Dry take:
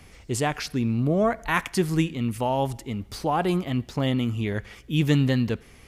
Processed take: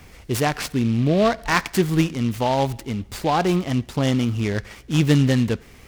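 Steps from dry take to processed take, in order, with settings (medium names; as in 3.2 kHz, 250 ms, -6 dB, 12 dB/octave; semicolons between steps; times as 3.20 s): delay time shaken by noise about 2.7 kHz, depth 0.036 ms; trim +4 dB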